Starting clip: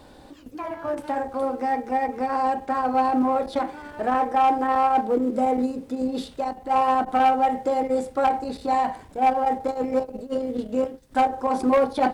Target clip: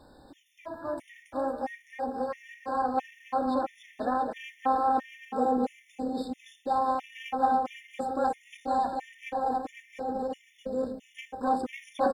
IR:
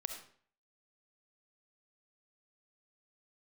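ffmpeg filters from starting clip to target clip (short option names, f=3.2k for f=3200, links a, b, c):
-af "aecho=1:1:280|504|683.2|826.6|941.2:0.631|0.398|0.251|0.158|0.1,afftfilt=real='re*gt(sin(2*PI*1.5*pts/sr)*(1-2*mod(floor(b*sr/1024/1800),2)),0)':imag='im*gt(sin(2*PI*1.5*pts/sr)*(1-2*mod(floor(b*sr/1024/1800),2)),0)':win_size=1024:overlap=0.75,volume=-6.5dB"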